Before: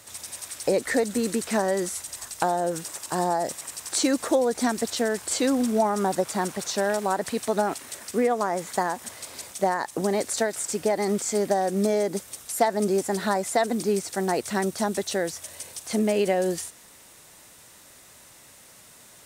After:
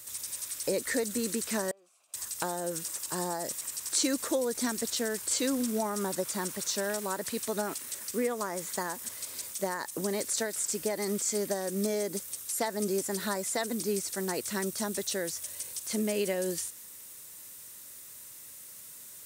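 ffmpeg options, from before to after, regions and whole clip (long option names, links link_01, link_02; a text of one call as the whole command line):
ffmpeg -i in.wav -filter_complex "[0:a]asettb=1/sr,asplit=3[link_01][link_02][link_03];[link_01]atrim=end=1.714[link_04];[link_02]atrim=start=1.71:end=2.14,asetpts=PTS-STARTPTS,afade=type=in:duration=0.004:curve=qsin,afade=type=out:start_time=0.426:duration=0.004:curve=qsin,acompressor=threshold=-36dB:ratio=4:attack=3.2:release=140:knee=1:detection=peak,asplit=3[link_05][link_06][link_07];[link_05]bandpass=frequency=730:width_type=q:width=8,volume=0dB[link_08];[link_06]bandpass=frequency=1090:width_type=q:width=8,volume=-6dB[link_09];[link_07]bandpass=frequency=2440:width_type=q:width=8,volume=-9dB[link_10];[link_08][link_09][link_10]amix=inputs=3:normalize=0[link_11];[link_03]atrim=start=2.136[link_12];[link_04][link_11]acrossfade=duration=0.004:curve1=hsin:curve2=qsin[link_13];[link_13][link_12]acrossfade=duration=0.004:curve1=qsin:curve2=hsin,aemphasis=mode=production:type=50fm,acrossover=split=7800[link_14][link_15];[link_15]acompressor=threshold=-31dB:ratio=4:attack=1:release=60[link_16];[link_14][link_16]amix=inputs=2:normalize=0,equalizer=frequency=750:width=5:gain=-10.5,volume=-6.5dB" out.wav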